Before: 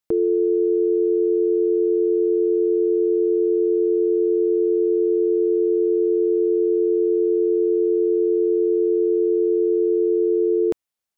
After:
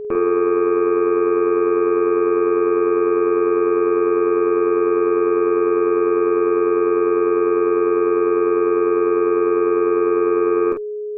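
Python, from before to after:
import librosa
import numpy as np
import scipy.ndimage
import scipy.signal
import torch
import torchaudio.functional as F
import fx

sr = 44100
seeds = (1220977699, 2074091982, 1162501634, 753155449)

y = fx.cheby_harmonics(x, sr, harmonics=(3, 6), levels_db=(-11, -22), full_scale_db=-12.5)
y = y + 10.0 ** (-27.0 / 20.0) * np.sin(2.0 * np.pi * 420.0 * np.arange(len(y)) / sr)
y = fx.room_early_taps(y, sr, ms=(14, 48), db=(-15.5, -5.5))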